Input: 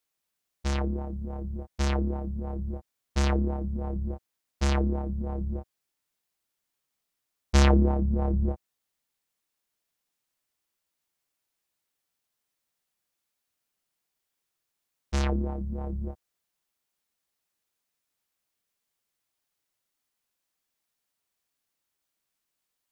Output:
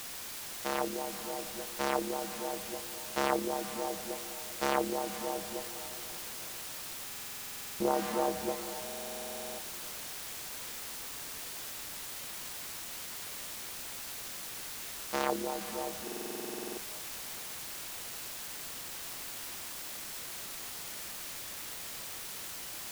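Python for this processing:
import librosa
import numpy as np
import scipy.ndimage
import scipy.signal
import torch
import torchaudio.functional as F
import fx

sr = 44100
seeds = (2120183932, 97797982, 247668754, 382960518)

y = scipy.signal.sosfilt(scipy.signal.butter(2, 340.0, 'highpass', fs=sr, output='sos'), x)
y = fx.peak_eq(y, sr, hz=790.0, db=10.0, octaves=3.0)
y = fx.quant_dither(y, sr, seeds[0], bits=6, dither='triangular')
y = fx.echo_diffused(y, sr, ms=470, feedback_pct=44, wet_db=-12.5)
y = fx.buffer_glitch(y, sr, at_s=(7.06, 8.84, 16.03), block=2048, repeats=15)
y = fx.doppler_dist(y, sr, depth_ms=0.19)
y = y * librosa.db_to_amplitude(-5.5)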